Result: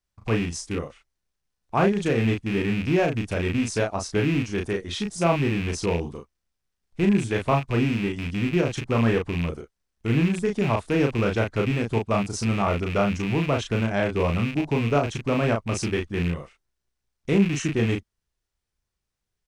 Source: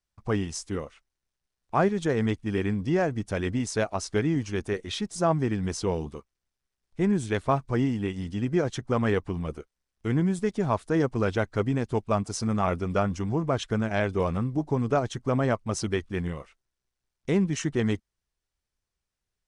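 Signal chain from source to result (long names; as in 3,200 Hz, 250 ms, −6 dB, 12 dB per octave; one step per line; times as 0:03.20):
loose part that buzzes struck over −31 dBFS, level −23 dBFS
low-shelf EQ 380 Hz +2.5 dB
double-tracking delay 35 ms −4 dB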